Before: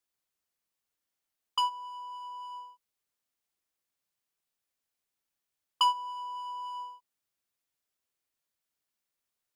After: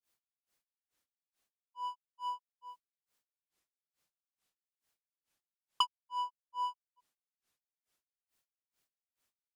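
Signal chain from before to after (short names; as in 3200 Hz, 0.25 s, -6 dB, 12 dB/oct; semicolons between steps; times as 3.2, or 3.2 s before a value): in parallel at +2 dB: compressor, threshold -38 dBFS, peak gain reduction 16.5 dB; on the sum: grains 0.222 s, grains 2.3/s, spray 15 ms, pitch spread up and down by 0 st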